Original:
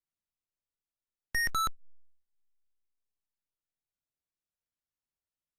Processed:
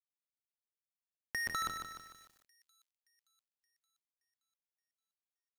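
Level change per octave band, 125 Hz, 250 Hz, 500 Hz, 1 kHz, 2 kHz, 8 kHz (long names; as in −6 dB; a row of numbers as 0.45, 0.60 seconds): −7.5, −2.0, −0.5, −6.0, −5.5, −5.5 decibels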